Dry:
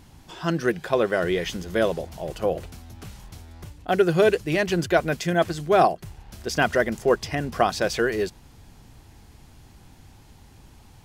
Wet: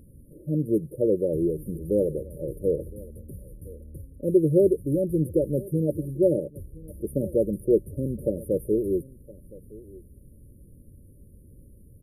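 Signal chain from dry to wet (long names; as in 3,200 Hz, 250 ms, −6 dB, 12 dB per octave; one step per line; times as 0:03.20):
linear-phase brick-wall band-stop 650–10,000 Hz
on a send: single-tap delay 933 ms −21 dB
on the sum: wrong playback speed 48 kHz file played as 44.1 kHz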